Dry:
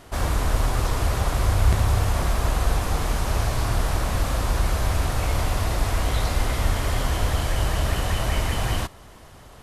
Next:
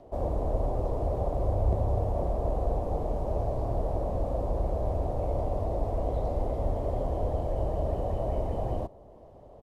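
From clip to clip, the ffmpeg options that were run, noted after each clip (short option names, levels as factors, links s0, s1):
-filter_complex "[0:a]acrossover=split=190|1300|6200[s0][s1][s2][s3];[s2]acompressor=mode=upward:threshold=0.00447:ratio=2.5[s4];[s0][s1][s4][s3]amix=inputs=4:normalize=0,firequalizer=gain_entry='entry(140,0);entry(580,11);entry(1400,-20);entry(8000,-23)':delay=0.05:min_phase=1,volume=0.422"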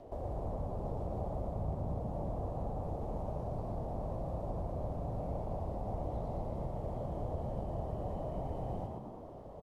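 -filter_complex "[0:a]acompressor=threshold=0.01:ratio=3,flanger=delay=8.4:depth=9.8:regen=-75:speed=1.1:shape=triangular,asplit=2[s0][s1];[s1]asplit=8[s2][s3][s4][s5][s6][s7][s8][s9];[s2]adelay=116,afreqshift=56,volume=0.631[s10];[s3]adelay=232,afreqshift=112,volume=0.367[s11];[s4]adelay=348,afreqshift=168,volume=0.211[s12];[s5]adelay=464,afreqshift=224,volume=0.123[s13];[s6]adelay=580,afreqshift=280,volume=0.0716[s14];[s7]adelay=696,afreqshift=336,volume=0.0412[s15];[s8]adelay=812,afreqshift=392,volume=0.024[s16];[s9]adelay=928,afreqshift=448,volume=0.014[s17];[s10][s11][s12][s13][s14][s15][s16][s17]amix=inputs=8:normalize=0[s18];[s0][s18]amix=inputs=2:normalize=0,volume=1.58"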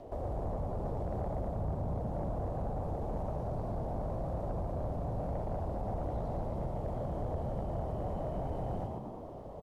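-af "asoftclip=type=tanh:threshold=0.0299,volume=1.5"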